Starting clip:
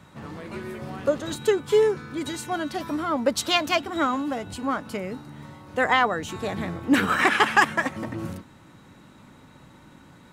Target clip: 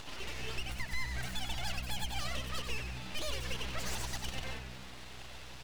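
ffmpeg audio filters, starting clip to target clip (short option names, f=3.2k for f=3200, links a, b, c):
-filter_complex "[0:a]acompressor=mode=upward:threshold=-33dB:ratio=2.5,equalizer=f=600:w=2.4:g=12.5,acompressor=threshold=-24dB:ratio=2,bandpass=f=940:t=q:w=0.65:csg=0,alimiter=limit=-20dB:level=0:latency=1:release=199,asoftclip=type=tanh:threshold=-24.5dB,asetrate=57191,aresample=44100,atempo=0.771105,flanger=delay=8.8:depth=1.9:regen=-87:speed=0.23:shape=triangular,asetrate=80703,aresample=44100,aeval=exprs='abs(val(0))':c=same,asplit=2[a][b];[b]asplit=7[c][d][e][f][g][h][i];[c]adelay=93,afreqshift=-63,volume=-7dB[j];[d]adelay=186,afreqshift=-126,volume=-12.4dB[k];[e]adelay=279,afreqshift=-189,volume=-17.7dB[l];[f]adelay=372,afreqshift=-252,volume=-23.1dB[m];[g]adelay=465,afreqshift=-315,volume=-28.4dB[n];[h]adelay=558,afreqshift=-378,volume=-33.8dB[o];[i]adelay=651,afreqshift=-441,volume=-39.1dB[p];[j][k][l][m][n][o][p]amix=inputs=7:normalize=0[q];[a][q]amix=inputs=2:normalize=0,volume=1.5dB"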